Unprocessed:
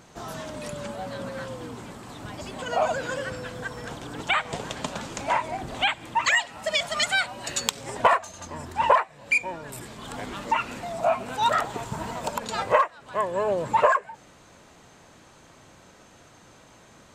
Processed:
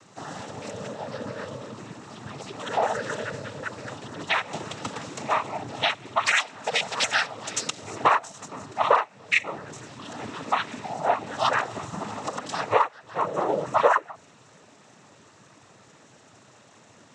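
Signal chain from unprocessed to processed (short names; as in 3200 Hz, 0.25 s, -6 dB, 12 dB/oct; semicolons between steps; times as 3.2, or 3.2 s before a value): noise vocoder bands 12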